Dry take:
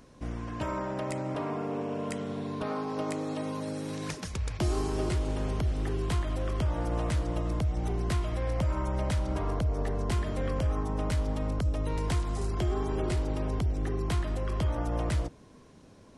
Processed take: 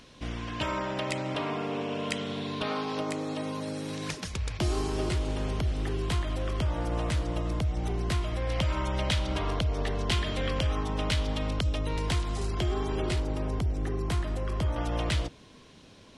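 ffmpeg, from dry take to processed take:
ffmpeg -i in.wav -af "asetnsamples=nb_out_samples=441:pad=0,asendcmd='2.99 equalizer g 5.5;8.5 equalizer g 15;11.79 equalizer g 8;13.2 equalizer g 1.5;14.76 equalizer g 12.5',equalizer=frequency=3300:width_type=o:width=1.5:gain=14.5" out.wav

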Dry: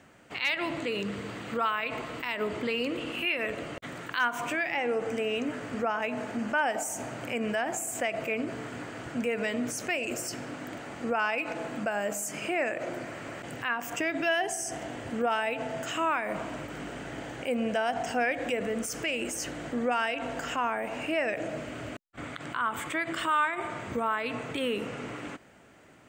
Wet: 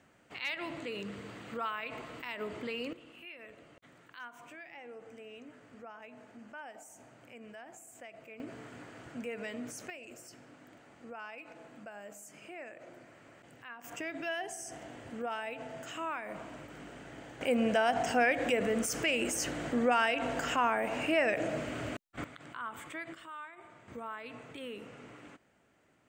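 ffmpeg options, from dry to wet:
ffmpeg -i in.wav -af "asetnsamples=nb_out_samples=441:pad=0,asendcmd='2.93 volume volume -19.5dB;8.4 volume volume -10dB;9.9 volume volume -17dB;13.84 volume volume -9.5dB;17.41 volume volume 0.5dB;22.24 volume volume -11dB;23.14 volume volume -19.5dB;23.88 volume volume -13dB',volume=-8dB" out.wav

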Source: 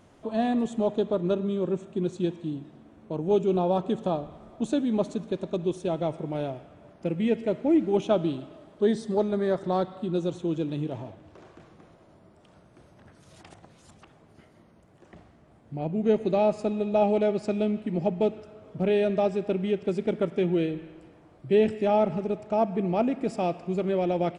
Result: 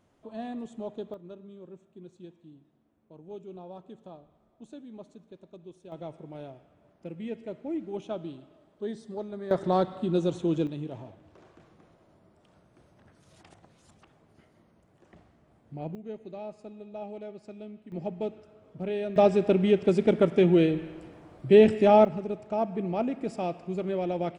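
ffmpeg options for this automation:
ffmpeg -i in.wav -af "asetnsamples=nb_out_samples=441:pad=0,asendcmd='1.14 volume volume -19.5dB;5.92 volume volume -11.5dB;9.51 volume volume 1.5dB;10.67 volume volume -5.5dB;15.95 volume volume -17dB;17.92 volume volume -8dB;19.16 volume volume 4.5dB;22.05 volume volume -4dB',volume=-11.5dB" out.wav

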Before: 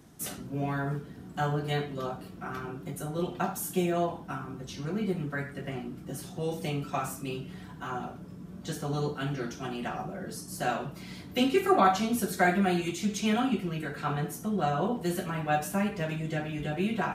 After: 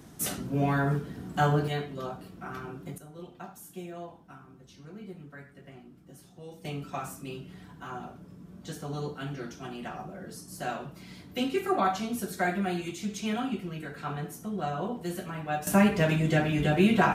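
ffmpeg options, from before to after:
ffmpeg -i in.wav -af "asetnsamples=nb_out_samples=441:pad=0,asendcmd='1.68 volume volume -2dB;2.98 volume volume -13dB;6.65 volume volume -4dB;15.67 volume volume 7.5dB',volume=5dB" out.wav

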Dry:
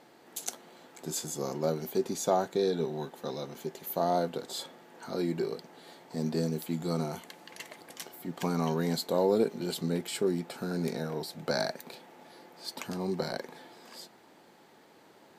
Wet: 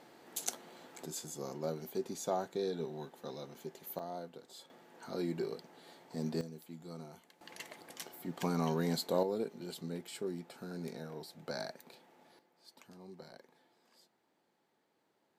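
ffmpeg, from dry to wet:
ffmpeg -i in.wav -af "asetnsamples=nb_out_samples=441:pad=0,asendcmd='1.06 volume volume -8dB;3.99 volume volume -15.5dB;4.7 volume volume -5.5dB;6.41 volume volume -16dB;7.41 volume volume -3.5dB;9.23 volume volume -10.5dB;12.39 volume volume -19.5dB',volume=-1dB" out.wav

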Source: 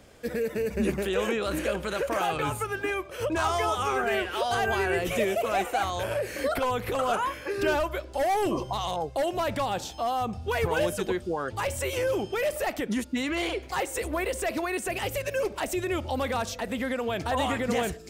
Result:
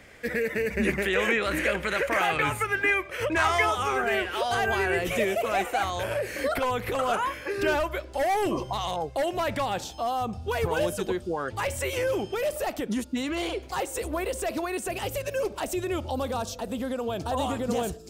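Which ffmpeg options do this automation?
ffmpeg -i in.wav -af "asetnsamples=nb_out_samples=441:pad=0,asendcmd='3.71 equalizer g 3.5;9.84 equalizer g -4;11.34 equalizer g 2.5;12.35 equalizer g -5.5;16.11 equalizer g -14.5',equalizer=frequency=2000:width_type=o:width=0.68:gain=14" out.wav

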